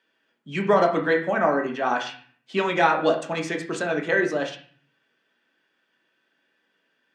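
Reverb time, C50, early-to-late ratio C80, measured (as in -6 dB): 0.45 s, 9.0 dB, 13.0 dB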